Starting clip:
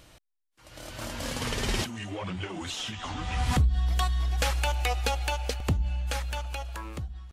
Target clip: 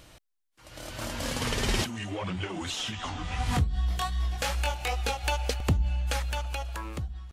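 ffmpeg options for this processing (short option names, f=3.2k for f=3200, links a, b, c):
-filter_complex "[0:a]asplit=3[a][b][c];[a]afade=t=out:st=3.09:d=0.02[d];[b]flanger=delay=19.5:depth=3.9:speed=2.6,afade=t=in:st=3.09:d=0.02,afade=t=out:st=5.23:d=0.02[e];[c]afade=t=in:st=5.23:d=0.02[f];[d][e][f]amix=inputs=3:normalize=0,volume=1.5dB"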